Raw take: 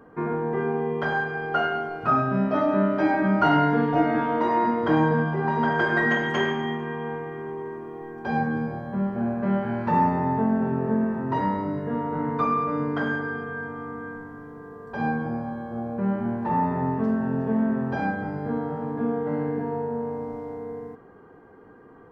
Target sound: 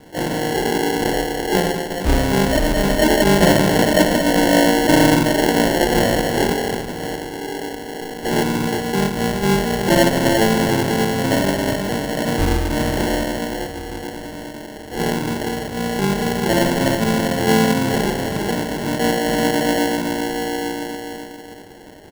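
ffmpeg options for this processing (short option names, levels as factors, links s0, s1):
-filter_complex "[0:a]asplit=2[s0][s1];[s1]adelay=369,lowpass=f=860:p=1,volume=0.531,asplit=2[s2][s3];[s3]adelay=369,lowpass=f=860:p=1,volume=0.49,asplit=2[s4][s5];[s5]adelay=369,lowpass=f=860:p=1,volume=0.49,asplit=2[s6][s7];[s7]adelay=369,lowpass=f=860:p=1,volume=0.49,asplit=2[s8][s9];[s9]adelay=369,lowpass=f=860:p=1,volume=0.49,asplit=2[s10][s11];[s11]adelay=369,lowpass=f=860:p=1,volume=0.49[s12];[s2][s4][s6][s8][s10][s12]amix=inputs=6:normalize=0[s13];[s0][s13]amix=inputs=2:normalize=0,asplit=3[s14][s15][s16];[s15]asetrate=33038,aresample=44100,atempo=1.33484,volume=0.501[s17];[s16]asetrate=88200,aresample=44100,atempo=0.5,volume=0.891[s18];[s14][s17][s18]amix=inputs=3:normalize=0,aresample=8000,aresample=44100,acrusher=samples=36:mix=1:aa=0.000001,volume=1.41"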